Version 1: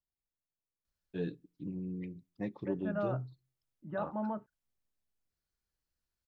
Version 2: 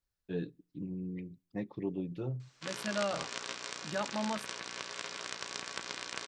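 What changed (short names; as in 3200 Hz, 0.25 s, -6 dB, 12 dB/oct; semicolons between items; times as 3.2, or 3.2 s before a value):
first voice: entry -0.85 s; second voice: remove Gaussian blur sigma 5.3 samples; background: unmuted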